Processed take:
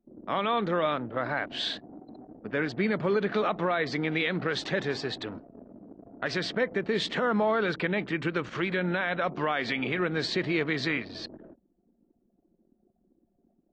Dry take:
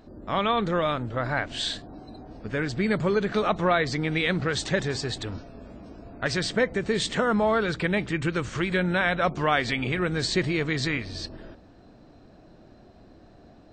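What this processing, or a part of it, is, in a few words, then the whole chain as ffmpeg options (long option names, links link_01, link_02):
DJ mixer with the lows and highs turned down: -filter_complex "[0:a]anlmdn=0.398,acrossover=split=160 5000:gain=0.1 1 0.0631[link_01][link_02][link_03];[link_01][link_02][link_03]amix=inputs=3:normalize=0,alimiter=limit=-16.5dB:level=0:latency=1:release=55"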